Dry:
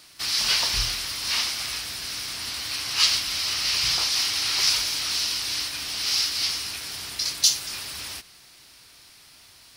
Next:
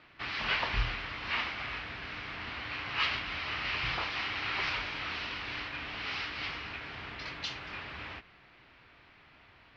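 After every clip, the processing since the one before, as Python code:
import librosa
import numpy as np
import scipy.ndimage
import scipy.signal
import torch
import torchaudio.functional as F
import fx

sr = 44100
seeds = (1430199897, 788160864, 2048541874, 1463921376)

y = scipy.signal.sosfilt(scipy.signal.butter(4, 2500.0, 'lowpass', fs=sr, output='sos'), x)
y = fx.end_taper(y, sr, db_per_s=330.0)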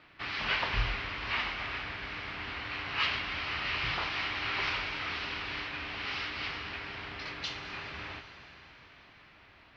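y = fx.rev_plate(x, sr, seeds[0], rt60_s=4.8, hf_ratio=0.95, predelay_ms=0, drr_db=7.0)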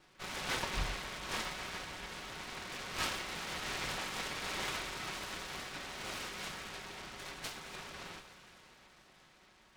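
y = fx.lower_of_two(x, sr, delay_ms=5.4)
y = fx.noise_mod_delay(y, sr, seeds[1], noise_hz=1200.0, depth_ms=0.071)
y = F.gain(torch.from_numpy(y), -4.0).numpy()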